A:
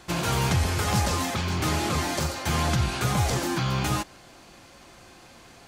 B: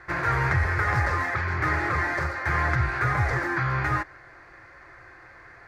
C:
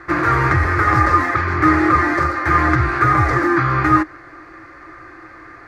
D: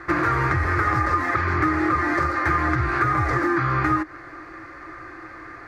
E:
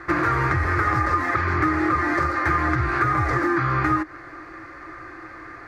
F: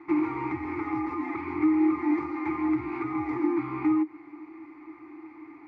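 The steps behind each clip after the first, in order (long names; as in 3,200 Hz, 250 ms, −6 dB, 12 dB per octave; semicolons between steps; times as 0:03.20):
drawn EQ curve 130 Hz 0 dB, 220 Hz −19 dB, 320 Hz −2 dB, 800 Hz −2 dB, 1,900 Hz +12 dB, 3,000 Hz −17 dB, 4,600 Hz −12 dB, 8,100 Hz −21 dB
hollow resonant body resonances 310/1,200 Hz, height 15 dB, ringing for 60 ms; level +6 dB
downward compressor, threshold −18 dBFS, peak gain reduction 9.5 dB
no processing that can be heard
formant filter u; level +4.5 dB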